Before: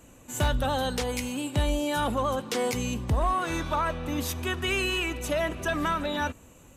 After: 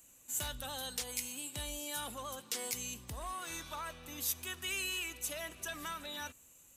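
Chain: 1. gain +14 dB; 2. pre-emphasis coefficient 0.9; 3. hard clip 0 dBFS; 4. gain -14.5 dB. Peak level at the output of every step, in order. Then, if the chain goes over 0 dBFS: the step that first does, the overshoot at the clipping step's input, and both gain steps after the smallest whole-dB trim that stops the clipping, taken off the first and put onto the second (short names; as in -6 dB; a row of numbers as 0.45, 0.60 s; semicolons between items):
-2.5, -4.0, -4.0, -18.5 dBFS; no overload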